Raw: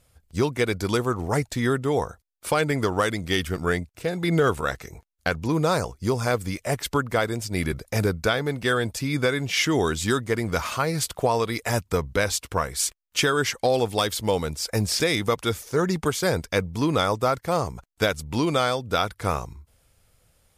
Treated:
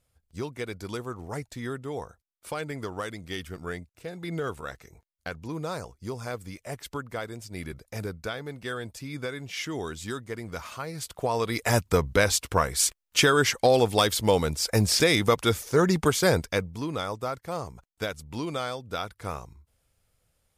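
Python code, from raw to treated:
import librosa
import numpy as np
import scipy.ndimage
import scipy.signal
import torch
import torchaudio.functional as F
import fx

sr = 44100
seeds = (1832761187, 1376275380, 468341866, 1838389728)

y = fx.gain(x, sr, db=fx.line((10.95, -11.0), (11.68, 1.5), (16.34, 1.5), (16.84, -9.0)))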